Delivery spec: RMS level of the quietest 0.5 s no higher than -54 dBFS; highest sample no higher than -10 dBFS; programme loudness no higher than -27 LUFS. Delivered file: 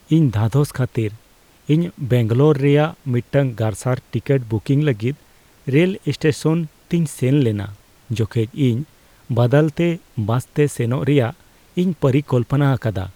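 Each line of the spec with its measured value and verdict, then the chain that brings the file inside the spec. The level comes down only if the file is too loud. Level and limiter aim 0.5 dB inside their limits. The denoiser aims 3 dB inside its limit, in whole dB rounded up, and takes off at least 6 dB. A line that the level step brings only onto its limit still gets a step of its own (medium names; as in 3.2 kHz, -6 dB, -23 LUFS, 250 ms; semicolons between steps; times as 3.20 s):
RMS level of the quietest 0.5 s -52 dBFS: fail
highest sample -3.5 dBFS: fail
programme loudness -19.5 LUFS: fail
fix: trim -8 dB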